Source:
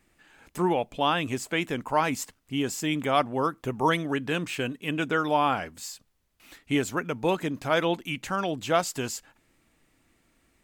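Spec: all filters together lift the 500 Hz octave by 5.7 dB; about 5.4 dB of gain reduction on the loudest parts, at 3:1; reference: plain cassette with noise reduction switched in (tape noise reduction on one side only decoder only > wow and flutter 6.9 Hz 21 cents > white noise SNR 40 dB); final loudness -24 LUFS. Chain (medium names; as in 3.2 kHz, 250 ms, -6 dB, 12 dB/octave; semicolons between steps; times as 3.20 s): peaking EQ 500 Hz +7 dB; compression 3:1, threshold -22 dBFS; tape noise reduction on one side only decoder only; wow and flutter 6.9 Hz 21 cents; white noise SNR 40 dB; trim +4 dB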